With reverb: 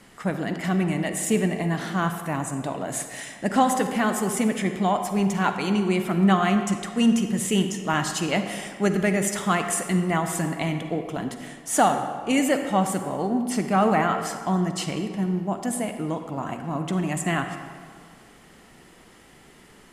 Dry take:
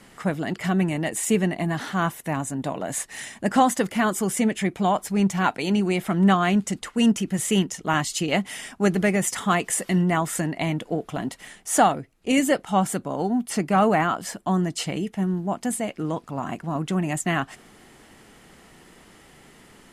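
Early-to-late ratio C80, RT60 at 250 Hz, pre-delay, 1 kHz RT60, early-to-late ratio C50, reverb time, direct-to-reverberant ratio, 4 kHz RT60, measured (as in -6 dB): 8.0 dB, 1.9 s, 38 ms, 1.9 s, 7.0 dB, 1.9 s, 6.5 dB, 1.2 s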